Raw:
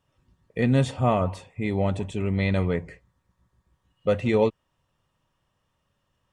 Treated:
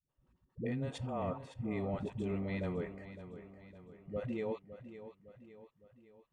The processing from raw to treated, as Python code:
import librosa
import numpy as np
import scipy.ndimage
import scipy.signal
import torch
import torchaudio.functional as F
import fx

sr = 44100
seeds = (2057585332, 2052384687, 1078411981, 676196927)

p1 = fx.peak_eq(x, sr, hz=94.0, db=-6.5, octaves=0.76)
p2 = fx.level_steps(p1, sr, step_db=17)
p3 = fx.high_shelf(p2, sr, hz=2900.0, db=-10.5)
p4 = fx.dispersion(p3, sr, late='highs', ms=95.0, hz=320.0)
p5 = p4 + fx.echo_feedback(p4, sr, ms=559, feedback_pct=50, wet_db=-12.5, dry=0)
y = p5 * 10.0 ** (-2.0 / 20.0)